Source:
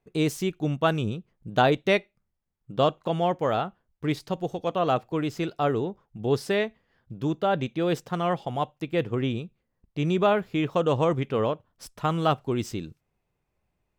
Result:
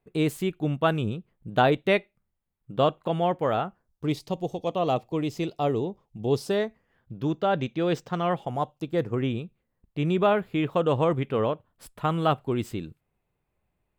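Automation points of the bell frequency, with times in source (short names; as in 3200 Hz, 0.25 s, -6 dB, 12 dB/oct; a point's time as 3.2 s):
bell -13 dB 0.53 oct
3.51 s 5700 Hz
4.17 s 1500 Hz
6.34 s 1500 Hz
7.39 s 11000 Hz
8.12 s 11000 Hz
8.78 s 1800 Hz
9.36 s 5700 Hz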